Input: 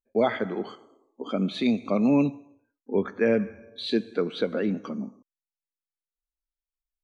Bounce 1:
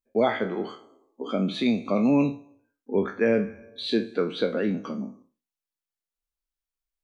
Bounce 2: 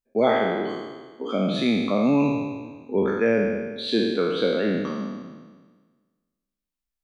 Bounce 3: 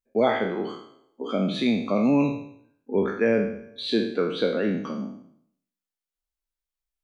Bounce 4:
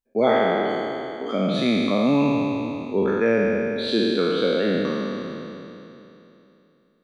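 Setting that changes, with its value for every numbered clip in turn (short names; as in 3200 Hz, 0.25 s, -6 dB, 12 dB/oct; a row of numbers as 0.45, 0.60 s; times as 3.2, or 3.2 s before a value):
spectral trails, RT60: 0.3, 1.45, 0.64, 3.04 s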